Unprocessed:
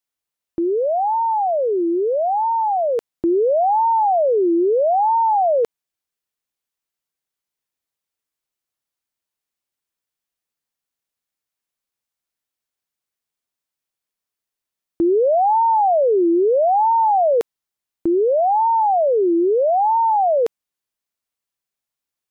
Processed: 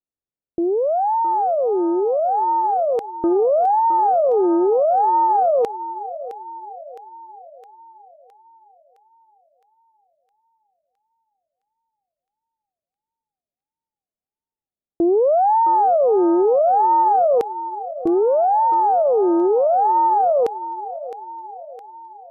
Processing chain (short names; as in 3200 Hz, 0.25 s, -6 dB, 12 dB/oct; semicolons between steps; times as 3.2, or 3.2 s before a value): low-pass opened by the level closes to 510 Hz, open at -19 dBFS; thinning echo 0.663 s, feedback 60%, high-pass 470 Hz, level -12 dB; Doppler distortion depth 0.14 ms